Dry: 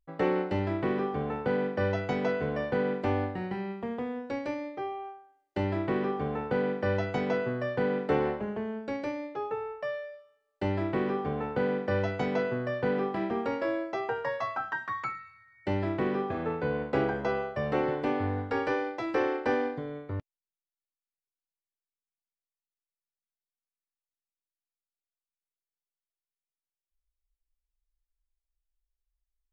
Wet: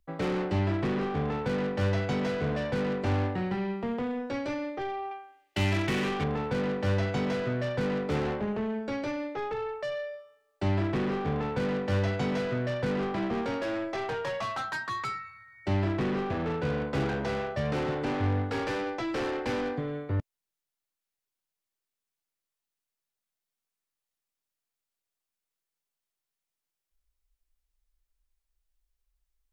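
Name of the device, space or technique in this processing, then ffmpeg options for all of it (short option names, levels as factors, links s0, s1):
one-band saturation: -filter_complex "[0:a]asettb=1/sr,asplit=3[s0][s1][s2];[s0]atrim=end=5.114[s3];[s1]atrim=start=5.11:end=6.24,asetpts=PTS-STARTPTS,afade=t=in:d=0.004:c=qsin,afade=t=out:st=1.126:d=0.004:c=qsin,equalizer=f=2600:t=o:w=1.3:g=15[s4];[s2]atrim=start=6.236[s5];[s3][s4]acrossfade=d=0.004:c1=hsin:c2=qsin[s6];[s6][s5]acrossfade=d=0.004:c1=qsin:c2=hsin,acrossover=split=200|4000[s7][s8][s9];[s8]asoftclip=type=tanh:threshold=0.015[s10];[s7][s10][s9]amix=inputs=3:normalize=0,volume=2"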